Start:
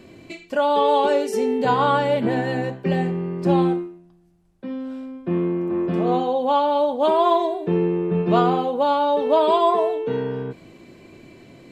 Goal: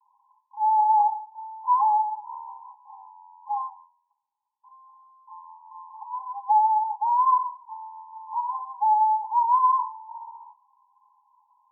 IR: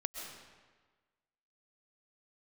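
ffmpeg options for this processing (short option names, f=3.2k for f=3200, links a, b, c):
-af "asuperpass=centerf=930:order=20:qfactor=3.7,volume=2.5dB"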